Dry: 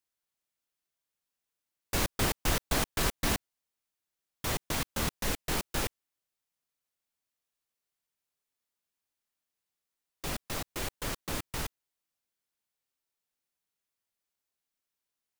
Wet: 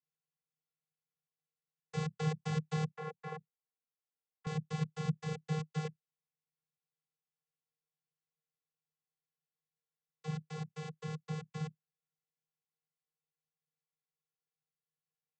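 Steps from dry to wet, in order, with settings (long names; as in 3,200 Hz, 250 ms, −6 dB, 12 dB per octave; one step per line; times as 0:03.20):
channel vocoder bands 16, square 155 Hz
0:02.92–0:04.47: three-way crossover with the lows and the highs turned down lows −16 dB, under 350 Hz, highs −18 dB, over 2,100 Hz
level −1.5 dB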